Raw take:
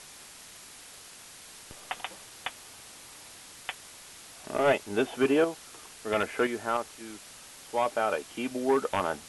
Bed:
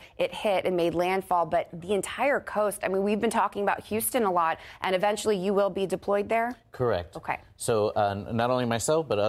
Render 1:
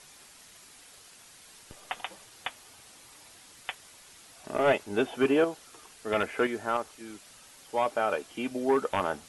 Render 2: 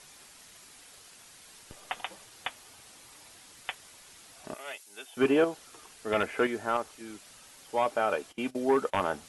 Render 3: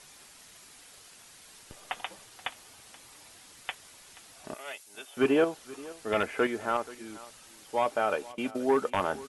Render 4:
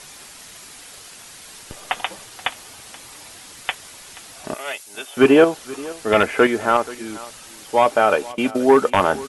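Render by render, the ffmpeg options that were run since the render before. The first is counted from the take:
ffmpeg -i in.wav -af "afftdn=noise_reduction=6:noise_floor=-49" out.wav
ffmpeg -i in.wav -filter_complex "[0:a]asettb=1/sr,asplit=3[link_01][link_02][link_03];[link_01]atrim=end=4.544[link_04];[link_02]atrim=start=4.54:end=5.17,asetpts=PTS-STARTPTS,afade=type=in:duration=0.004:curve=qsin,afade=type=out:start_time=0.626:duration=0.004:curve=qsin,aderivative[link_05];[link_03]atrim=start=5.166[link_06];[link_04][link_05]acrossfade=duration=0.004:curve1=hsin:curve2=qsin[link_07];[link_07][link_06]acrossfade=duration=0.004:curve1=qsin:curve2=hsin,asplit=3[link_08][link_09][link_10];[link_08]afade=type=out:start_time=8.31:duration=0.02[link_11];[link_09]agate=range=-17dB:threshold=-39dB:ratio=16:release=100:detection=peak,afade=type=in:start_time=8.31:duration=0.02,afade=type=out:start_time=8.97:duration=0.02[link_12];[link_10]afade=type=in:start_time=8.97:duration=0.02[link_13];[link_11][link_12][link_13]amix=inputs=3:normalize=0" out.wav
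ffmpeg -i in.wav -af "aecho=1:1:479:0.106" out.wav
ffmpeg -i in.wav -af "volume=12dB" out.wav

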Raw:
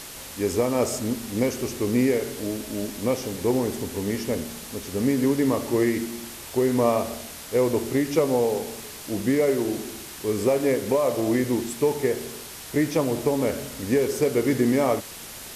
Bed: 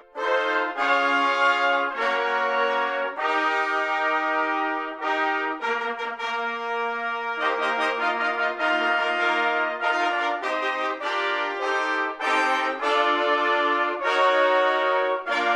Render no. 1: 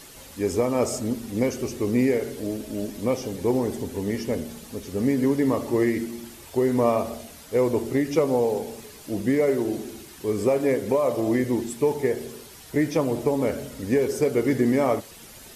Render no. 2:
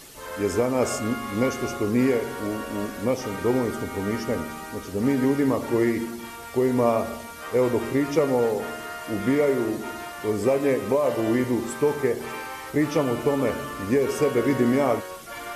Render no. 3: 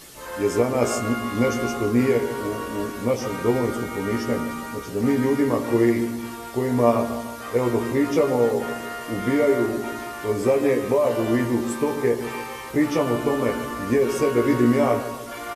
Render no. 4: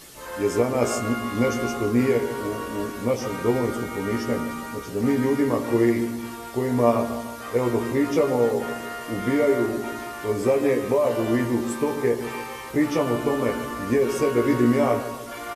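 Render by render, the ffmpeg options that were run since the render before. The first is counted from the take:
ffmpeg -i in.wav -af "afftdn=noise_reduction=9:noise_floor=-40" out.wav
ffmpeg -i in.wav -i bed.wav -filter_complex "[1:a]volume=-13.5dB[link_01];[0:a][link_01]amix=inputs=2:normalize=0" out.wav
ffmpeg -i in.wav -filter_complex "[0:a]asplit=2[link_01][link_02];[link_02]adelay=17,volume=-4.5dB[link_03];[link_01][link_03]amix=inputs=2:normalize=0,asplit=2[link_04][link_05];[link_05]adelay=149,lowpass=frequency=2000:poles=1,volume=-12dB,asplit=2[link_06][link_07];[link_07]adelay=149,lowpass=frequency=2000:poles=1,volume=0.53,asplit=2[link_08][link_09];[link_09]adelay=149,lowpass=frequency=2000:poles=1,volume=0.53,asplit=2[link_10][link_11];[link_11]adelay=149,lowpass=frequency=2000:poles=1,volume=0.53,asplit=2[link_12][link_13];[link_13]adelay=149,lowpass=frequency=2000:poles=1,volume=0.53,asplit=2[link_14][link_15];[link_15]adelay=149,lowpass=frequency=2000:poles=1,volume=0.53[link_16];[link_04][link_06][link_08][link_10][link_12][link_14][link_16]amix=inputs=7:normalize=0" out.wav
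ffmpeg -i in.wav -af "volume=-1dB" out.wav

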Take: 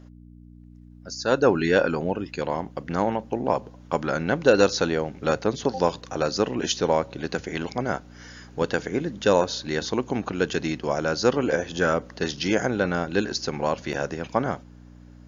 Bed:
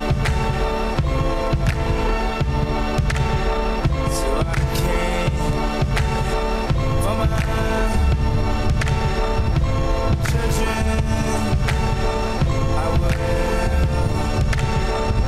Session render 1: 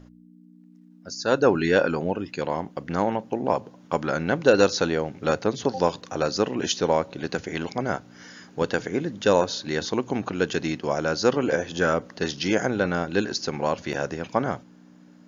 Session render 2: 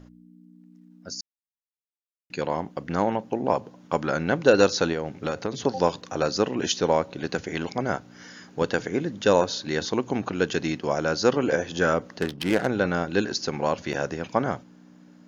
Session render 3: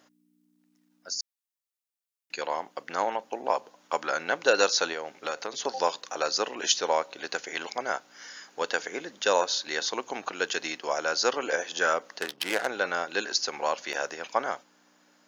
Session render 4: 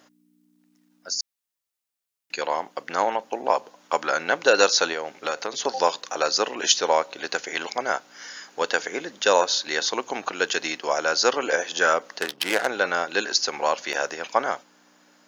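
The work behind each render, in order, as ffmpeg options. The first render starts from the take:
ffmpeg -i in.wav -af "bandreject=frequency=60:width_type=h:width=4,bandreject=frequency=120:width_type=h:width=4" out.wav
ffmpeg -i in.wav -filter_complex "[0:a]asettb=1/sr,asplit=3[link_01][link_02][link_03];[link_01]atrim=end=4.924[link_04];[link_02]atrim=start=4.92:end=5.52,asetpts=PTS-STARTPTS,afade=type=in:duration=0.004:curve=qsin,afade=type=out:start_time=0.596:duration=0.004:curve=qsin,acompressor=threshold=-22dB:ratio=6:attack=3.2:release=140:knee=1:detection=peak[link_05];[link_03]atrim=start=5.516[link_06];[link_04][link_05]acrossfade=duration=0.004:curve1=hsin:curve2=qsin[link_07];[link_07][link_06]acrossfade=duration=0.004:curve1=qsin:curve2=hsin,asplit=3[link_08][link_09][link_10];[link_08]afade=type=out:start_time=12.2:duration=0.02[link_11];[link_09]adynamicsmooth=sensitivity=3:basefreq=530,afade=type=in:start_time=12.2:duration=0.02,afade=type=out:start_time=12.66:duration=0.02[link_12];[link_10]afade=type=in:start_time=12.66:duration=0.02[link_13];[link_11][link_12][link_13]amix=inputs=3:normalize=0,asplit=3[link_14][link_15][link_16];[link_14]atrim=end=1.21,asetpts=PTS-STARTPTS,afade=type=out:start_time=1.206:duration=0.004:curve=hsin[link_17];[link_15]atrim=start=1.21:end=2.3,asetpts=PTS-STARTPTS,volume=0[link_18];[link_16]atrim=start=2.3,asetpts=PTS-STARTPTS,afade=type=in:duration=0.004:curve=hsin[link_19];[link_17][link_18][link_19]concat=n=3:v=0:a=1" out.wav
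ffmpeg -i in.wav -af "highpass=650,highshelf=frequency=5100:gain=6" out.wav
ffmpeg -i in.wav -af "volume=5dB,alimiter=limit=-2dB:level=0:latency=1" out.wav

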